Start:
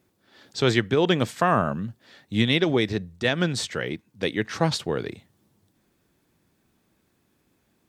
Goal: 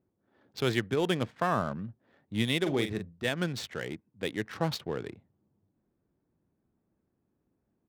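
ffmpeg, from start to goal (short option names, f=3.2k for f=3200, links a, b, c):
-filter_complex "[0:a]adynamicsmooth=sensitivity=6.5:basefreq=1k,asplit=3[a][b][c];[a]afade=t=out:st=2.65:d=0.02[d];[b]asplit=2[e][f];[f]adelay=42,volume=-8dB[g];[e][g]amix=inputs=2:normalize=0,afade=t=in:st=2.65:d=0.02,afade=t=out:st=3.18:d=0.02[h];[c]afade=t=in:st=3.18:d=0.02[i];[d][h][i]amix=inputs=3:normalize=0,volume=-7.5dB"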